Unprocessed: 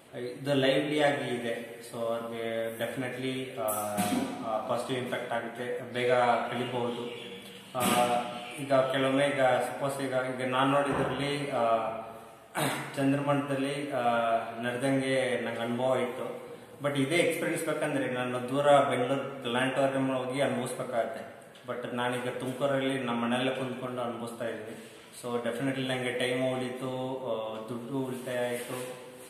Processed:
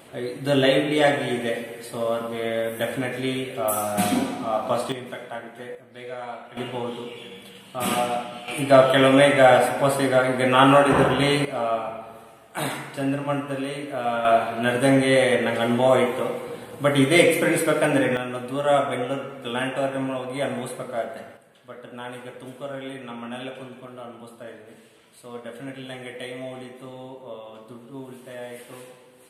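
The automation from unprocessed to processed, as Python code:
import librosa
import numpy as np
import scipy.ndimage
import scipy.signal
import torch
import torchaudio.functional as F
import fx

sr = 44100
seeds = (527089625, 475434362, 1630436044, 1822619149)

y = fx.gain(x, sr, db=fx.steps((0.0, 7.0), (4.92, -2.0), (5.75, -9.5), (6.57, 2.0), (8.48, 11.0), (11.45, 2.0), (14.25, 10.0), (18.17, 2.0), (21.37, -5.0)))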